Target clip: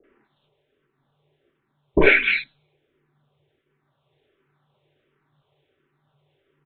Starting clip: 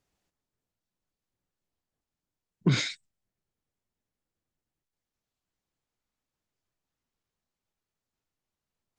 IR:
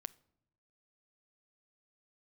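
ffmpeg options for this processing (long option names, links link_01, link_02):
-filter_complex "[0:a]lowshelf=frequency=310:width_type=q:width=3:gain=-12.5,aecho=1:1:6.1:0.3,asubboost=boost=2.5:cutoff=52,afreqshift=-130,asetrate=37084,aresample=44100,atempo=1.18921,acrossover=split=570|1800[link_01][link_02][link_03];[link_02]adelay=50[link_04];[link_03]adelay=330[link_05];[link_01][link_04][link_05]amix=inputs=3:normalize=0,asplit=2[link_06][link_07];[1:a]atrim=start_sample=2205[link_08];[link_07][link_08]afir=irnorm=-1:irlink=0,volume=6.5dB[link_09];[link_06][link_09]amix=inputs=2:normalize=0,asetrate=59535,aresample=44100,aresample=8000,aresample=44100,alimiter=level_in=15dB:limit=-1dB:release=50:level=0:latency=1,asplit=2[link_10][link_11];[link_11]afreqshift=-1.4[link_12];[link_10][link_12]amix=inputs=2:normalize=1,volume=2.5dB"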